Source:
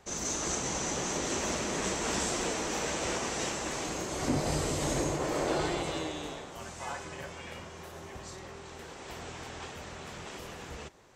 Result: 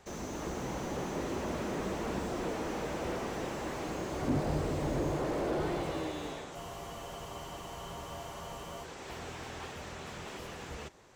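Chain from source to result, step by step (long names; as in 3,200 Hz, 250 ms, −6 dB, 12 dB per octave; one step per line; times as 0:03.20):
frozen spectrum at 0:06.58, 2.26 s
slew-rate limiting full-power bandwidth 18 Hz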